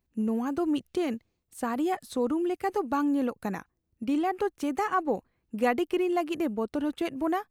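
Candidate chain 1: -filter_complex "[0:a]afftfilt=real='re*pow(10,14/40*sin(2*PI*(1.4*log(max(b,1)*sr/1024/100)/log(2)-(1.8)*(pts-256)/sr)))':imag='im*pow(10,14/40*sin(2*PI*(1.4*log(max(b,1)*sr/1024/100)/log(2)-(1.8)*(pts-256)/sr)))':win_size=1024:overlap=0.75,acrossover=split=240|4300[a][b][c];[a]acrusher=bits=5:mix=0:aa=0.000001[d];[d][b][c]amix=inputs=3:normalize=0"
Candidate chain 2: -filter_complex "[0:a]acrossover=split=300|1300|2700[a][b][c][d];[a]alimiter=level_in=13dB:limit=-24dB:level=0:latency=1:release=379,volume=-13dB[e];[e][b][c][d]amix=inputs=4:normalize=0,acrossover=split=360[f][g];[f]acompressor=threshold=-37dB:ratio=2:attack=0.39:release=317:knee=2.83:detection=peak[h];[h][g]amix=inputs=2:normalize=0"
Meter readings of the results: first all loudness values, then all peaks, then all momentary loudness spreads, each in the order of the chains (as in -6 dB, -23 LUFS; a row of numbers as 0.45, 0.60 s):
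-28.0, -32.0 LUFS; -10.5, -15.0 dBFS; 8, 9 LU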